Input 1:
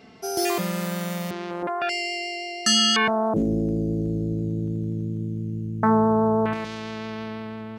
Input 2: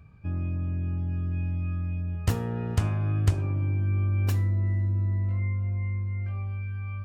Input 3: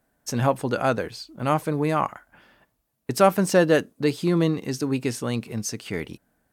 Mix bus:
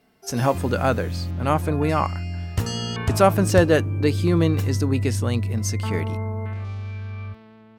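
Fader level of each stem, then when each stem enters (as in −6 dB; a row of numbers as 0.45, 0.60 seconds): −13.5, +1.0, +1.0 decibels; 0.00, 0.30, 0.00 seconds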